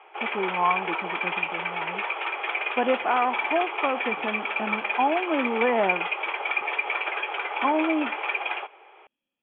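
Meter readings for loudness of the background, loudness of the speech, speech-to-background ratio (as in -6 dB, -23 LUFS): -28.0 LUFS, -27.0 LUFS, 1.0 dB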